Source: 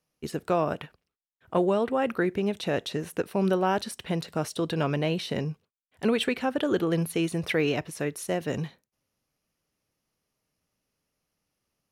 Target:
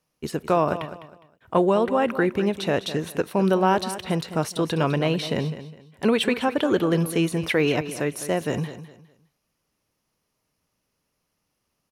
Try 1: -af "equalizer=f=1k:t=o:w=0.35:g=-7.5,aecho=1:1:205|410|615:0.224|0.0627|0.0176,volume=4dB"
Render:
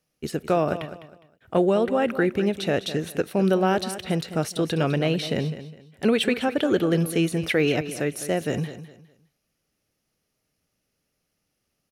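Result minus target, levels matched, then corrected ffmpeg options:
1000 Hz band -3.5 dB
-af "equalizer=f=1k:t=o:w=0.35:g=4,aecho=1:1:205|410|615:0.224|0.0627|0.0176,volume=4dB"

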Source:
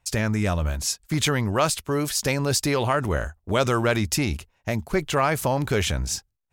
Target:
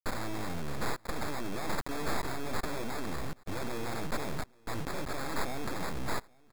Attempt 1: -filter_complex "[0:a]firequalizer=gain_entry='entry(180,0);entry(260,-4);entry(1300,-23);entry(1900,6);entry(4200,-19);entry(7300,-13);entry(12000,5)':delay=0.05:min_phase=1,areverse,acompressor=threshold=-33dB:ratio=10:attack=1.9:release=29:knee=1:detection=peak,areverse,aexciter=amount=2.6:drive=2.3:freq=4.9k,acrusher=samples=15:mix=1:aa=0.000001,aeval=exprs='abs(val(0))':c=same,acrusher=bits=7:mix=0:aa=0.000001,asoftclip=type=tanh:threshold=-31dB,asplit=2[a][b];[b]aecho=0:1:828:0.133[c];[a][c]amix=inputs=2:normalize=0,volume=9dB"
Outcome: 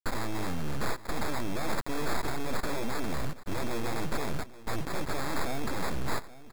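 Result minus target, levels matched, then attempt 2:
compressor: peak gain reduction -7 dB; echo-to-direct +9.5 dB
-filter_complex "[0:a]firequalizer=gain_entry='entry(180,0);entry(260,-4);entry(1300,-23);entry(1900,6);entry(4200,-19);entry(7300,-13);entry(12000,5)':delay=0.05:min_phase=1,areverse,acompressor=threshold=-40.5dB:ratio=10:attack=1.9:release=29:knee=1:detection=peak,areverse,aexciter=amount=2.6:drive=2.3:freq=4.9k,acrusher=samples=15:mix=1:aa=0.000001,aeval=exprs='abs(val(0))':c=same,acrusher=bits=7:mix=0:aa=0.000001,asoftclip=type=tanh:threshold=-31dB,asplit=2[a][b];[b]aecho=0:1:828:0.0447[c];[a][c]amix=inputs=2:normalize=0,volume=9dB"

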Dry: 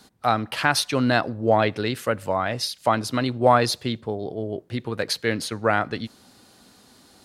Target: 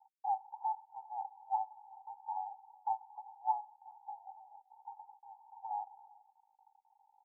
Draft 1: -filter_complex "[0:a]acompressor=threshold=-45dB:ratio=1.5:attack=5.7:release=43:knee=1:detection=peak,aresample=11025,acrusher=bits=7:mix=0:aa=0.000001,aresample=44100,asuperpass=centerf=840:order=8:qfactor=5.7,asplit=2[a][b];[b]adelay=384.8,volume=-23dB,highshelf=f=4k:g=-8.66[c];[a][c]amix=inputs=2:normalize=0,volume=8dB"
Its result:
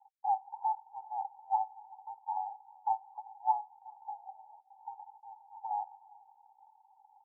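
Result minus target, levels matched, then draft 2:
compressor: peak gain reduction -4 dB
-filter_complex "[0:a]acompressor=threshold=-56.5dB:ratio=1.5:attack=5.7:release=43:knee=1:detection=peak,aresample=11025,acrusher=bits=7:mix=0:aa=0.000001,aresample=44100,asuperpass=centerf=840:order=8:qfactor=5.7,asplit=2[a][b];[b]adelay=384.8,volume=-23dB,highshelf=f=4k:g=-8.66[c];[a][c]amix=inputs=2:normalize=0,volume=8dB"

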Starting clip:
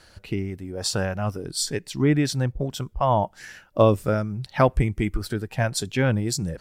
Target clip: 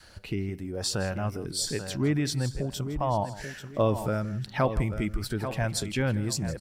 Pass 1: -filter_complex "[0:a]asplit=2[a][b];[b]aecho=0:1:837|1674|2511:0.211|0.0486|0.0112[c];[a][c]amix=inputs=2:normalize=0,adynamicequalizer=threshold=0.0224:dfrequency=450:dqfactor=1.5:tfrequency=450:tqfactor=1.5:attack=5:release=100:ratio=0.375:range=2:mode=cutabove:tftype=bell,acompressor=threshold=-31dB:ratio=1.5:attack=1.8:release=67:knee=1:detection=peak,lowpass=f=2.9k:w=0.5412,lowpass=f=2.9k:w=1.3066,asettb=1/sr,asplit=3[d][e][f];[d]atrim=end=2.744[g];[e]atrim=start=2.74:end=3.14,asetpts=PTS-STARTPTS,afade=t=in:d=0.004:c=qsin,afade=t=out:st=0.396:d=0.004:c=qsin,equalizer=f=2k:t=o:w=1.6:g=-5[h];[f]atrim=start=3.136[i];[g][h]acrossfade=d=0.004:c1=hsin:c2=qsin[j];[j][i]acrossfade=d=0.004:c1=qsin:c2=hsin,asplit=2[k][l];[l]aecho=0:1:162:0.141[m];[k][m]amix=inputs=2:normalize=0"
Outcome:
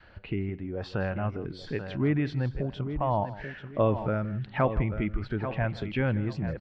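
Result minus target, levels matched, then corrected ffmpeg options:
4000 Hz band -11.0 dB
-filter_complex "[0:a]asplit=2[a][b];[b]aecho=0:1:837|1674|2511:0.211|0.0486|0.0112[c];[a][c]amix=inputs=2:normalize=0,adynamicequalizer=threshold=0.0224:dfrequency=450:dqfactor=1.5:tfrequency=450:tqfactor=1.5:attack=5:release=100:ratio=0.375:range=2:mode=cutabove:tftype=bell,acompressor=threshold=-31dB:ratio=1.5:attack=1.8:release=67:knee=1:detection=peak,asettb=1/sr,asplit=3[d][e][f];[d]atrim=end=2.744[g];[e]atrim=start=2.74:end=3.14,asetpts=PTS-STARTPTS,afade=t=in:d=0.004:c=qsin,afade=t=out:st=0.396:d=0.004:c=qsin,equalizer=f=2k:t=o:w=1.6:g=-5[h];[f]atrim=start=3.136[i];[g][h]acrossfade=d=0.004:c1=hsin:c2=qsin[j];[j][i]acrossfade=d=0.004:c1=qsin:c2=hsin,asplit=2[k][l];[l]aecho=0:1:162:0.141[m];[k][m]amix=inputs=2:normalize=0"

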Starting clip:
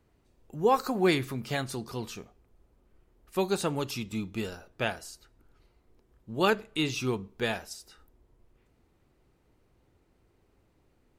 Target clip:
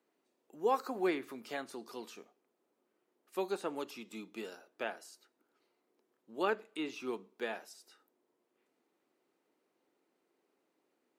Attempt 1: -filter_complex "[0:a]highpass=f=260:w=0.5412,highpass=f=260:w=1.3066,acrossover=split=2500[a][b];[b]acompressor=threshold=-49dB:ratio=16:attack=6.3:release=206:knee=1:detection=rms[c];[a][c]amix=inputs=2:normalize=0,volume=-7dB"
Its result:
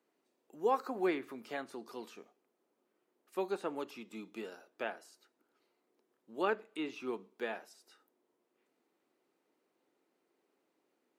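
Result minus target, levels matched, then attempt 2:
compressor: peak gain reduction +6 dB
-filter_complex "[0:a]highpass=f=260:w=0.5412,highpass=f=260:w=1.3066,acrossover=split=2500[a][b];[b]acompressor=threshold=-42.5dB:ratio=16:attack=6.3:release=206:knee=1:detection=rms[c];[a][c]amix=inputs=2:normalize=0,volume=-7dB"

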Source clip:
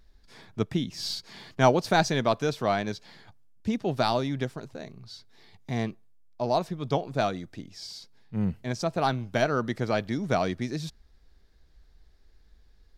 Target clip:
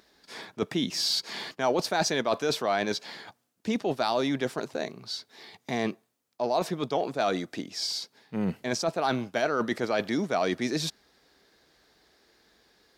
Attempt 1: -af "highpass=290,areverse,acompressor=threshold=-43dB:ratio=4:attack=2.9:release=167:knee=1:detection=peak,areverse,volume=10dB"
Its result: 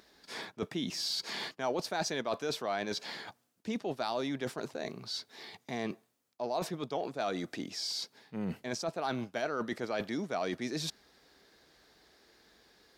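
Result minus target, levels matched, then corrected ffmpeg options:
compressor: peak gain reduction +7.5 dB
-af "highpass=290,areverse,acompressor=threshold=-33dB:ratio=4:attack=2.9:release=167:knee=1:detection=peak,areverse,volume=10dB"

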